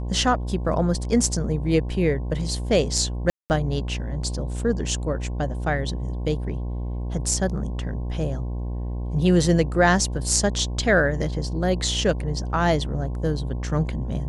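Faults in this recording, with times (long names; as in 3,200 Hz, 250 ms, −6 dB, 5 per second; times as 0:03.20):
mains buzz 60 Hz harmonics 18 −28 dBFS
0:03.30–0:03.50: drop-out 199 ms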